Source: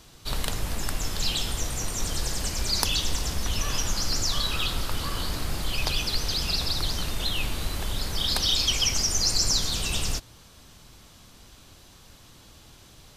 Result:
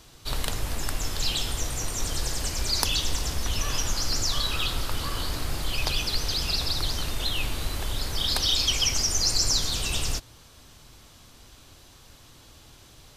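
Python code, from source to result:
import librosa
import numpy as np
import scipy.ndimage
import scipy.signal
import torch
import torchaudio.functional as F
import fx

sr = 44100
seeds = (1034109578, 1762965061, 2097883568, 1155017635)

y = fx.peak_eq(x, sr, hz=190.0, db=-9.5, octaves=0.2)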